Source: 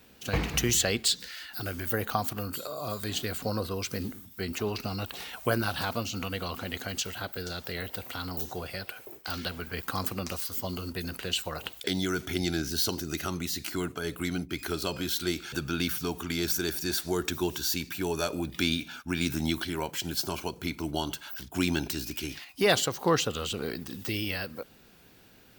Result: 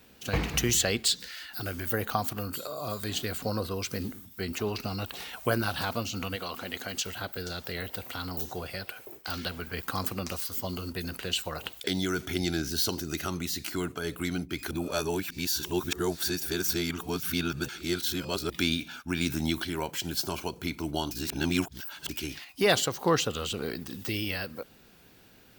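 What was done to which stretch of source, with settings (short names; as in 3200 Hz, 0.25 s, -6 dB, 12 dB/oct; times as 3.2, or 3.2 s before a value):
6.35–7.05 HPF 350 Hz -> 150 Hz 6 dB/oct
14.71–18.5 reverse
21.11–22.09 reverse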